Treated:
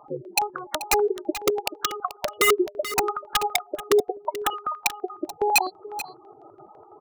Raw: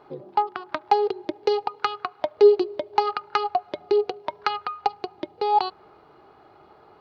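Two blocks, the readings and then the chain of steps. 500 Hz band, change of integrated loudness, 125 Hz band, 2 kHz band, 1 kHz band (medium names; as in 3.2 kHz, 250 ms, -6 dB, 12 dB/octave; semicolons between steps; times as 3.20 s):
-3.0 dB, -1.0 dB, no reading, +9.0 dB, -2.5 dB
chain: in parallel at +1.5 dB: compression 6:1, threshold -32 dBFS, peak gain reduction 20.5 dB; on the sum: spectral gate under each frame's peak -10 dB strong; high-pass 82 Hz 24 dB/octave; integer overflow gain 11.5 dB; on a send: delay 434 ms -13.5 dB; on the sum: step-sequenced notch 12 Hz 390–4700 Hz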